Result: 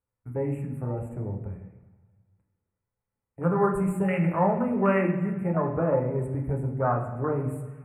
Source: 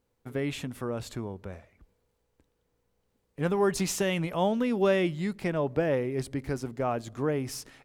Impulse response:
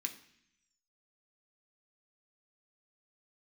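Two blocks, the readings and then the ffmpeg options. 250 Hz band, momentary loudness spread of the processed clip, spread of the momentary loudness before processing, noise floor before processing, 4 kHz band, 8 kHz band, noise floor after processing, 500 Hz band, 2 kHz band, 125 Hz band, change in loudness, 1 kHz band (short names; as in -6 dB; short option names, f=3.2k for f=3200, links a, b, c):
+3.0 dB, 10 LU, 12 LU, -76 dBFS, under -15 dB, under -15 dB, under -85 dBFS, +1.5 dB, -0.5 dB, +6.5 dB, +2.5 dB, +5.5 dB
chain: -filter_complex "[0:a]afwtdn=0.0251,asuperstop=centerf=4600:order=12:qfactor=0.88[a];[1:a]atrim=start_sample=2205,asetrate=23814,aresample=44100[b];[a][b]afir=irnorm=-1:irlink=0,volume=2.5dB"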